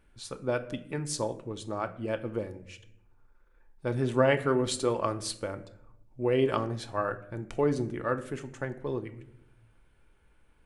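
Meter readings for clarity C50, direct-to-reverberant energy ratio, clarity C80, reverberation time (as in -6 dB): 14.5 dB, 7.5 dB, 18.0 dB, 0.80 s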